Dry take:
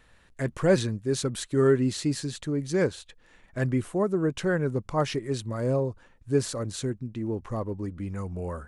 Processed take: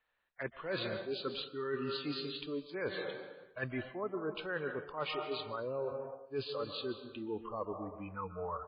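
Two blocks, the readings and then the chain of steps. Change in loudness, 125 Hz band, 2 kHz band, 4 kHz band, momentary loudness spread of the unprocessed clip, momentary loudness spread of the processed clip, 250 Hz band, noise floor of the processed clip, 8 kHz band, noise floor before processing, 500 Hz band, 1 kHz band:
−11.5 dB, −19.5 dB, −5.5 dB, −3.5 dB, 10 LU, 6 LU, −14.5 dB, −63 dBFS, below −40 dB, −59 dBFS, −11.0 dB, −5.5 dB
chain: in parallel at −11 dB: dead-zone distortion −40 dBFS
on the sum: three-way crossover with the lows and the highs turned down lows −18 dB, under 480 Hz, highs −16 dB, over 3,900 Hz
echo with shifted repeats 200 ms, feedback 35%, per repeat +99 Hz, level −23 dB
noise reduction from a noise print of the clip's start 21 dB
dense smooth reverb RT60 1.3 s, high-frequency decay 0.7×, pre-delay 115 ms, DRR 11.5 dB
dynamic equaliser 740 Hz, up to −6 dB, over −43 dBFS, Q 1.8
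reversed playback
downward compressor 16 to 1, threshold −37 dBFS, peak gain reduction 17 dB
reversed playback
level +3.5 dB
MP3 16 kbit/s 11,025 Hz

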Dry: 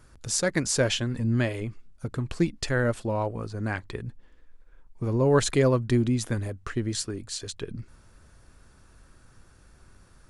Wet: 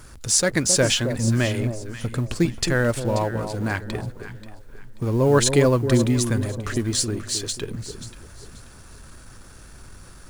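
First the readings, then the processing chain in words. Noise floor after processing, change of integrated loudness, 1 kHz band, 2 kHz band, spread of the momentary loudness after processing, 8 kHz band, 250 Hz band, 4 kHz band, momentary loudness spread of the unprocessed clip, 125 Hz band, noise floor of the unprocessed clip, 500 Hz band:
−45 dBFS, +5.0 dB, +4.5 dB, +5.0 dB, 14 LU, +9.0 dB, +4.5 dB, +7.5 dB, 15 LU, +4.5 dB, −57 dBFS, +4.5 dB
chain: mu-law and A-law mismatch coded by mu
high-shelf EQ 3,800 Hz +6 dB
delay that swaps between a low-pass and a high-pass 267 ms, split 960 Hz, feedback 54%, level −7.5 dB
level +3 dB

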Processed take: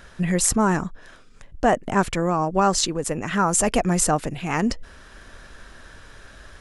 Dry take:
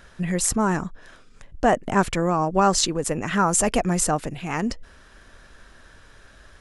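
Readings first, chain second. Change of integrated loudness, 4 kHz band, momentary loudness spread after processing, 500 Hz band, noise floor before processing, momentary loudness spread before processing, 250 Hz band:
+0.5 dB, 0.0 dB, 7 LU, +0.5 dB, −51 dBFS, 9 LU, +1.0 dB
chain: speech leveller 2 s

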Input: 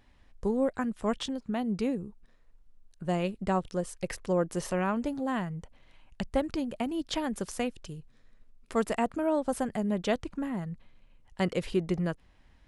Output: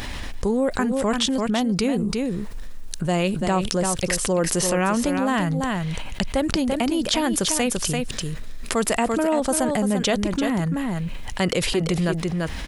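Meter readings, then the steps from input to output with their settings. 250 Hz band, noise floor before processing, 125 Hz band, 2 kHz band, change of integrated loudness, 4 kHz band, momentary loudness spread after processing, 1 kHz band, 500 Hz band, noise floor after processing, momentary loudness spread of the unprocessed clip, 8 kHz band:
+9.0 dB, −61 dBFS, +10.5 dB, +12.0 dB, +8.5 dB, +15.5 dB, 8 LU, +8.5 dB, +7.5 dB, −31 dBFS, 9 LU, +19.5 dB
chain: high-shelf EQ 2,600 Hz +9 dB
on a send: single-tap delay 340 ms −9.5 dB
on the sum: envelope flattener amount 70%
level +3 dB

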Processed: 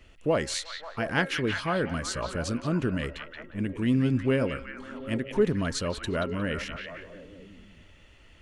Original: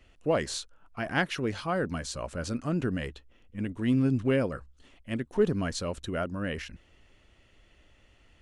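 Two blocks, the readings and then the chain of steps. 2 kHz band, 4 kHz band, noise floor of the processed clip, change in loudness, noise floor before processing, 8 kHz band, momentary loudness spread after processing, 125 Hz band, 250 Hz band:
+3.5 dB, +4.0 dB, −54 dBFS, +1.5 dB, −62 dBFS, +3.0 dB, 14 LU, +2.0 dB, +1.5 dB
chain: notch filter 740 Hz, Q 12
hum removal 270.7 Hz, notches 8
in parallel at −2.5 dB: downward compressor, threshold −36 dBFS, peak gain reduction 16 dB
on the sum: echo through a band-pass that steps 178 ms, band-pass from 2,800 Hz, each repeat −0.7 octaves, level −3 dB

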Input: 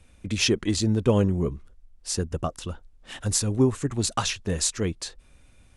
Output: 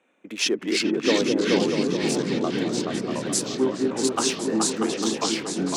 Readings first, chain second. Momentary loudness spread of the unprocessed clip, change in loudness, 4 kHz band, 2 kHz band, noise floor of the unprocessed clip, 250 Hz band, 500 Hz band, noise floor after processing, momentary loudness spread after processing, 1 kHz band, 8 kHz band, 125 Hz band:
16 LU, +1.5 dB, +3.5 dB, +5.5 dB, −56 dBFS, +4.0 dB, +4.5 dB, −44 dBFS, 5 LU, +4.5 dB, +1.0 dB, −8.5 dB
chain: adaptive Wiener filter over 9 samples
high-pass filter 280 Hz 24 dB per octave
echo whose low-pass opens from repeat to repeat 213 ms, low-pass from 400 Hz, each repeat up 2 octaves, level 0 dB
delay with pitch and tempo change per echo 253 ms, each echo −3 semitones, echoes 3

